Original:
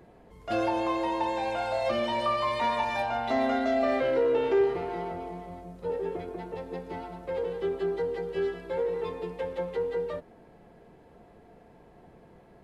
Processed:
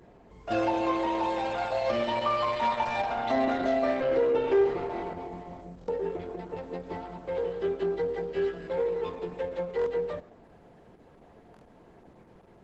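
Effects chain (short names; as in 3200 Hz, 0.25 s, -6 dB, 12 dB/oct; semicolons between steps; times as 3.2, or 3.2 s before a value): 3.35–3.81 upward compressor, threshold -36 dBFS; darkening echo 0.13 s, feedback 27%, low-pass 2000 Hz, level -22 dB; stuck buffer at 4.93/5.79/8.58/9.77/11.52/12.16, samples 1024, times 3; gain +1 dB; Opus 12 kbps 48000 Hz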